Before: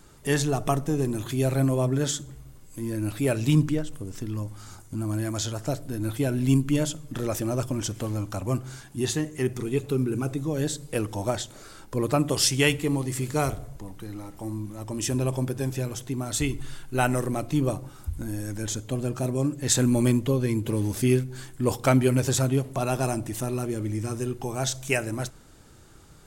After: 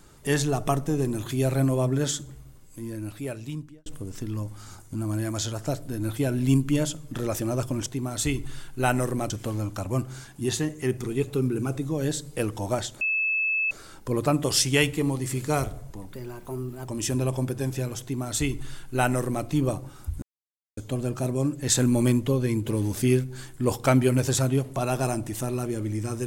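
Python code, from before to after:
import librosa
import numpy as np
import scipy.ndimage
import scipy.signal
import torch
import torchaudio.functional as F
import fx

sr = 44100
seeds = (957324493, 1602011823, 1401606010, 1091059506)

y = fx.edit(x, sr, fx.fade_out_span(start_s=2.24, length_s=1.62),
    fx.insert_tone(at_s=11.57, length_s=0.7, hz=2610.0, db=-22.0),
    fx.speed_span(start_s=13.98, length_s=0.9, speed=1.18),
    fx.duplicate(start_s=16.01, length_s=1.44, to_s=7.86),
    fx.silence(start_s=18.22, length_s=0.55), tone=tone)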